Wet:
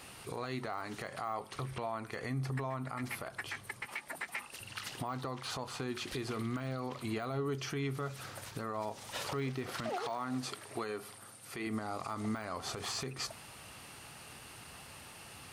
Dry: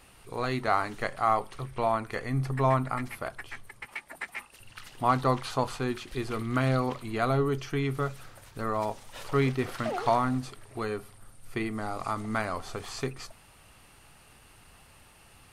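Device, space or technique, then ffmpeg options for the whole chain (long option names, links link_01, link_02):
broadcast voice chain: -filter_complex "[0:a]asettb=1/sr,asplit=3[link_01][link_02][link_03];[link_01]atrim=end=9.894[link_04];[link_02]atrim=start=9.89:end=11.67,asetpts=PTS-STARTPTS,afade=type=in:duration=0.004:curve=qsin,afade=type=out:start_time=1.776:duration=0.004:curve=qsin,highpass=frequency=290:poles=1[link_05];[link_03]atrim=start=11.666[link_06];[link_04][link_05]acrossfade=duration=0.004:curve1=hsin:curve2=qsin[link_07];[link_07][link_06]acrossfade=duration=0.004:curve1=qsin:curve2=hsin,highpass=91,deesser=1,acompressor=threshold=-36dB:ratio=5,equalizer=frequency=5100:width_type=o:width=1.2:gain=3,alimiter=level_in=8.5dB:limit=-24dB:level=0:latency=1:release=81,volume=-8.5dB,volume=5dB"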